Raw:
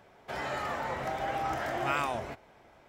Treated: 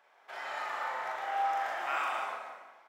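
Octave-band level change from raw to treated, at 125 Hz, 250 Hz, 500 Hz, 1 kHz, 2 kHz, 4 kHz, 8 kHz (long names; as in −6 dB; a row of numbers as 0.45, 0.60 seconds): below −30 dB, below −15 dB, −7.0 dB, +0.5 dB, −0.5 dB, −2.5 dB, can't be measured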